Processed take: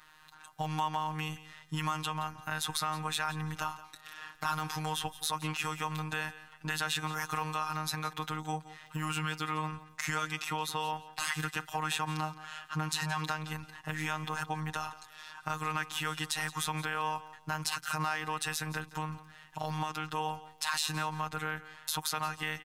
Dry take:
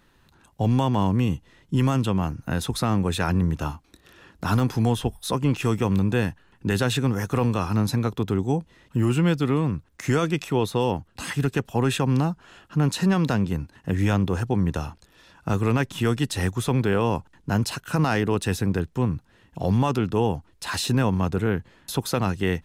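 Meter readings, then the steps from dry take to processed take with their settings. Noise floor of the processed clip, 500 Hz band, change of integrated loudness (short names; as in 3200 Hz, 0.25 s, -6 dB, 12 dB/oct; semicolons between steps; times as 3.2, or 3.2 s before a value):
-57 dBFS, -18.0 dB, -10.5 dB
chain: resonant low shelf 640 Hz -13.5 dB, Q 1.5; in parallel at +0.5 dB: limiter -22.5 dBFS, peak gain reduction 11 dB; on the sum: compressor 2:1, threshold -33 dBFS, peak gain reduction 9 dB; crackle 21/s -52 dBFS; robotiser 155 Hz; on a send: feedback echo 0.172 s, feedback 24%, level -16.5 dB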